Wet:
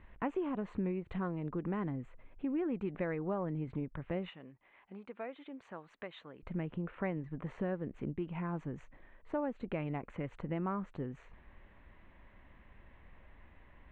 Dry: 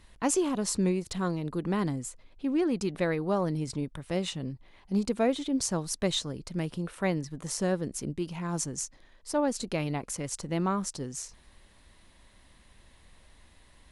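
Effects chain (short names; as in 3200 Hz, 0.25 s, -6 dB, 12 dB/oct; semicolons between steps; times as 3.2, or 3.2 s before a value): inverse Chebyshev low-pass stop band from 4800 Hz, stop band 40 dB; compressor 2.5:1, threshold -36 dBFS, peak gain reduction 10.5 dB; 4.29–6.43 HPF 1100 Hz 6 dB/oct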